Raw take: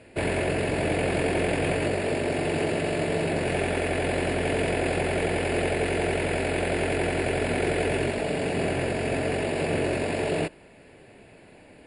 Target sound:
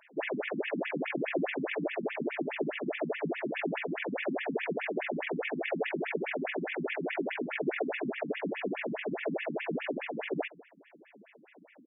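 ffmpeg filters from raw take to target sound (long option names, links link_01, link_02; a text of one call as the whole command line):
ffmpeg -i in.wav -filter_complex "[0:a]asettb=1/sr,asplit=3[link_01][link_02][link_03];[link_01]atrim=end=7.594[link_04];[link_02]atrim=start=7.59:end=8.06,asetpts=PTS-STARTPTS,afade=type=in:duration=0.004:curve=qsin,afade=type=out:start_time=0.466:duration=0.004:curve=qsin,bandreject=frequency=3100:width=6.2[link_05];[link_03]atrim=start=8.056[link_06];[link_04][link_05]acrossfade=duration=0.004:curve1=hsin:curve2=qsin[link_07];[link_07][link_06]acrossfade=duration=0.004:curve1=qsin:curve2=hsin,aecho=1:1:176:0.0891,afftfilt=real='re*between(b*sr/1024,200*pow(2600/200,0.5+0.5*sin(2*PI*4.8*pts/sr))/1.41,200*pow(2600/200,0.5+0.5*sin(2*PI*4.8*pts/sr))*1.41)':imag='im*between(b*sr/1024,200*pow(2600/200,0.5+0.5*sin(2*PI*4.8*pts/sr))/1.41,200*pow(2600/200,0.5+0.5*sin(2*PI*4.8*pts/sr))*1.41)':win_size=1024:overlap=0.75" out.wav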